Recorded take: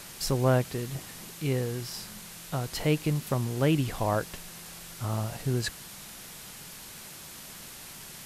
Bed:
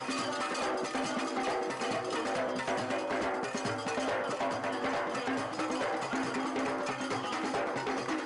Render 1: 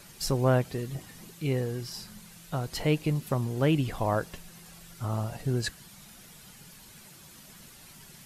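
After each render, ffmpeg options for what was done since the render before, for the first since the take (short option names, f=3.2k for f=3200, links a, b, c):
-af "afftdn=nr=9:nf=-45"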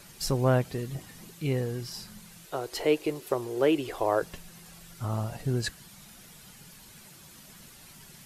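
-filter_complex "[0:a]asettb=1/sr,asplit=3[a][b][c];[a]atrim=end=2.454[d];[b]atrim=start=2.45:end=4.22,asetpts=PTS-STARTPTS,afade=t=in:d=0.004:c=qsin,afade=t=out:st=1.766:d=0.004:c=qsin,lowshelf=f=270:t=q:w=3:g=-11[e];[c]atrim=start=4.216[f];[d][e]acrossfade=d=0.004:c1=hsin:c2=qsin[g];[g][f]acrossfade=d=0.004:c1=qsin:c2=hsin"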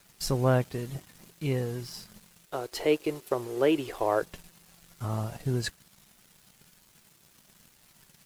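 -af "aeval=exprs='sgn(val(0))*max(abs(val(0))-0.00316,0)':c=same"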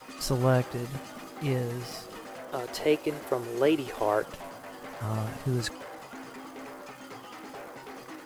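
-filter_complex "[1:a]volume=-10dB[a];[0:a][a]amix=inputs=2:normalize=0"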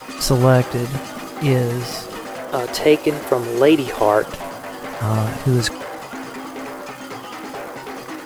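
-af "volume=12dB,alimiter=limit=-3dB:level=0:latency=1"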